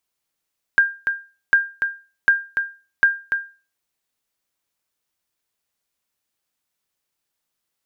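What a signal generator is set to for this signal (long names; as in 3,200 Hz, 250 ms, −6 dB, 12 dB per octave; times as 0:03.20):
ping with an echo 1,600 Hz, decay 0.33 s, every 0.75 s, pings 4, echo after 0.29 s, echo −7 dB −6.5 dBFS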